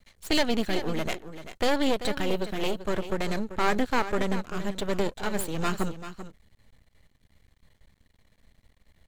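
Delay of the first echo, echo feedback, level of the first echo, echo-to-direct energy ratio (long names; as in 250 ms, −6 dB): 389 ms, repeats not evenly spaced, −12.0 dB, −12.0 dB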